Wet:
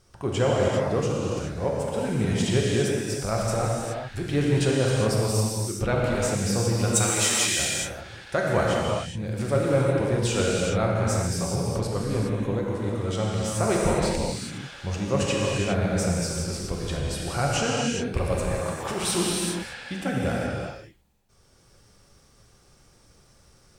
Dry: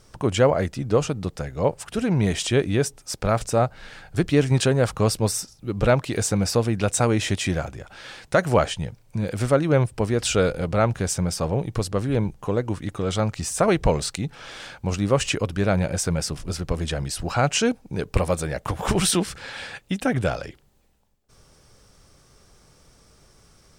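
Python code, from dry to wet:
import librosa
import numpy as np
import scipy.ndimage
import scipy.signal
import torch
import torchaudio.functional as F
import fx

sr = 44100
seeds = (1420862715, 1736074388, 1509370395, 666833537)

y = fx.over_compress(x, sr, threshold_db=-21.0, ratio=-1.0, at=(3.47, 4.31))
y = fx.tilt_eq(y, sr, slope=4.5, at=(6.95, 7.58), fade=0.02)
y = fx.highpass(y, sr, hz=320.0, slope=6, at=(18.52, 19.03))
y = fx.rev_gated(y, sr, seeds[0], gate_ms=440, shape='flat', drr_db=-4.0)
y = F.gain(torch.from_numpy(y), -7.5).numpy()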